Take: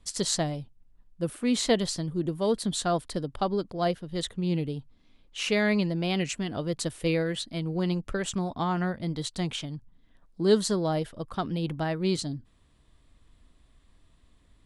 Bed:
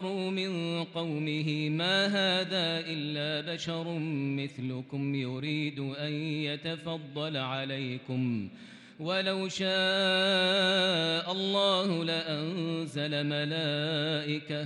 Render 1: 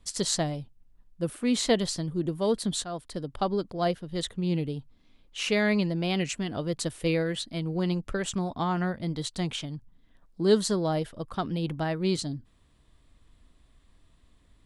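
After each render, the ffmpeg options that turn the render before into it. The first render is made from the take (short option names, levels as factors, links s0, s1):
-filter_complex "[0:a]asplit=2[s0][s1];[s0]atrim=end=2.84,asetpts=PTS-STARTPTS,afade=t=out:st=2.836:d=0.004:c=hsin:silence=0.237137[s2];[s1]atrim=start=2.84,asetpts=PTS-STARTPTS,afade=t=in:d=0.58:silence=0.237137[s3];[s2][s3]concat=n=2:v=0:a=1"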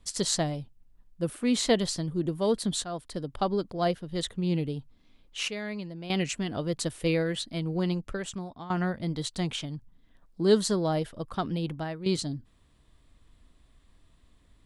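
-filter_complex "[0:a]asplit=5[s0][s1][s2][s3][s4];[s0]atrim=end=5.482[s5];[s1]atrim=start=5.478:end=6.102,asetpts=PTS-STARTPTS,volume=0.282[s6];[s2]atrim=start=6.098:end=8.7,asetpts=PTS-STARTPTS,afade=t=out:st=1.702:d=0.9:silence=0.16788[s7];[s3]atrim=start=8.7:end=12.06,asetpts=PTS-STARTPTS,afade=t=in:d=0.004:c=hsin:silence=0.16788,afade=t=out:st=2.83:d=0.53:silence=0.316228[s8];[s4]atrim=start=12.06,asetpts=PTS-STARTPTS,afade=t=in:d=0.004:c=hsin:silence=0.316228[s9];[s5][s6]acrossfade=d=0.004:c1=hsin:c2=hsin[s10];[s7][s8][s9]concat=n=3:v=0:a=1[s11];[s10][s11]acrossfade=d=0.004:c1=hsin:c2=hsin"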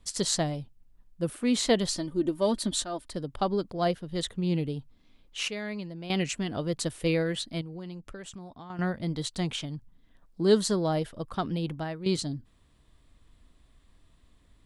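-filter_complex "[0:a]asettb=1/sr,asplit=3[s0][s1][s2];[s0]atrim=end=1.884[s3];[s1]atrim=start=1.88:end=3.11,asetpts=PTS-STARTPTS,afade=t=in:d=0.004:c=qsin,afade=t=out:st=1.226:d=0.004:c=qsin,aecho=1:1:3.3:0.65,atrim=end_sample=54243[s4];[s2]atrim=start=3.106[s5];[s3][s4]acrossfade=d=0.004:c1=hsin:c2=qsin[s6];[s6][s5]acrossfade=d=0.004:c1=qsin:c2=hsin,asettb=1/sr,asplit=3[s7][s8][s9];[s7]atrim=end=7.614[s10];[s8]atrim=start=7.61:end=8.79,asetpts=PTS-STARTPTS,afade=t=in:d=0.004:c=qsin,afade=t=out:st=1.176:d=0.004:c=qsin,acompressor=threshold=0.00794:ratio=2.5:attack=3.2:release=140:knee=1:detection=peak[s11];[s9]atrim=start=8.786[s12];[s10][s11]acrossfade=d=0.004:c1=hsin:c2=qsin[s13];[s13][s12]acrossfade=d=0.004:c1=qsin:c2=hsin"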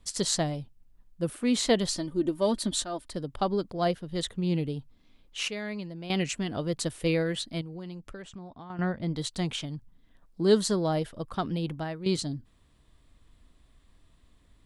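-filter_complex "[0:a]asettb=1/sr,asplit=3[s0][s1][s2];[s0]atrim=end=8.224[s3];[s1]atrim=start=8.22:end=9.16,asetpts=PTS-STARTPTS,afade=t=in:d=0.004:c=qsin,afade=t=out:st=0.936:d=0.004:c=qsin,aemphasis=mode=reproduction:type=50fm[s4];[s2]atrim=start=9.156[s5];[s3][s4]acrossfade=d=0.004:c1=hsin:c2=qsin[s6];[s6][s5]acrossfade=d=0.004:c1=qsin:c2=hsin"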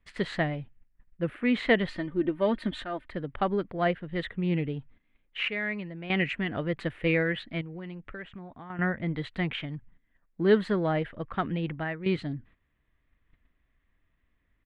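-af "agate=range=0.251:threshold=0.00224:ratio=16:detection=peak,firequalizer=gain_entry='entry(1000,0);entry(1900,11);entry(5600,-28)':delay=0.05:min_phase=1"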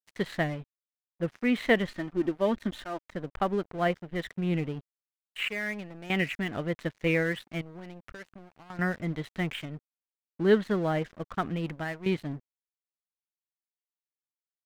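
-af "aeval=exprs='sgn(val(0))*max(abs(val(0))-0.00596,0)':c=same"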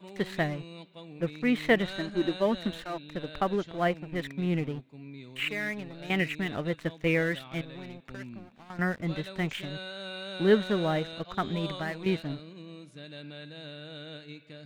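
-filter_complex "[1:a]volume=0.224[s0];[0:a][s0]amix=inputs=2:normalize=0"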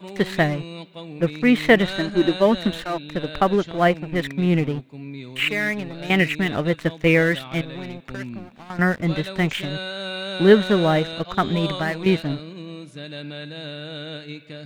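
-af "volume=2.99,alimiter=limit=0.708:level=0:latency=1"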